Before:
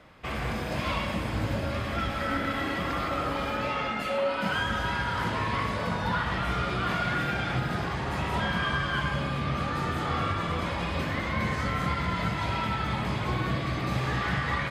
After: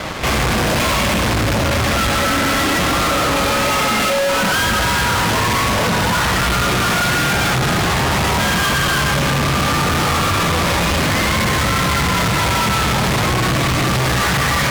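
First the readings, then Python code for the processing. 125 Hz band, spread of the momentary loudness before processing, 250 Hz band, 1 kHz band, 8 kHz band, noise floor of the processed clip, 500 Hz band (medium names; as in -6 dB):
+11.5 dB, 3 LU, +12.0 dB, +12.5 dB, +27.0 dB, -16 dBFS, +12.5 dB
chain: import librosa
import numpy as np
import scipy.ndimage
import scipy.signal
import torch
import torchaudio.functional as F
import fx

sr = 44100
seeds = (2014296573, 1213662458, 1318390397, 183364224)

y = fx.fuzz(x, sr, gain_db=52.0, gate_db=-55.0)
y = y * librosa.db_to_amplitude(-2.5)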